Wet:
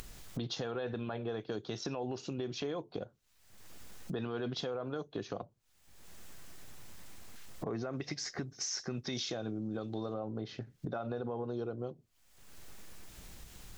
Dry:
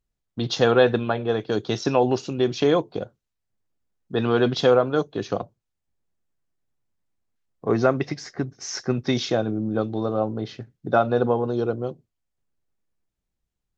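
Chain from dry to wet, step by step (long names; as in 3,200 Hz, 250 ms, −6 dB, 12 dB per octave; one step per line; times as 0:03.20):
0:07.93–0:10.14: high-shelf EQ 3,100 Hz +10.5 dB
upward compression, threshold −26 dBFS
brickwall limiter −16 dBFS, peak gain reduction 11 dB
downward compressor 3 to 1, threshold −39 dBFS, peak gain reduction 13.5 dB
one half of a high-frequency compander encoder only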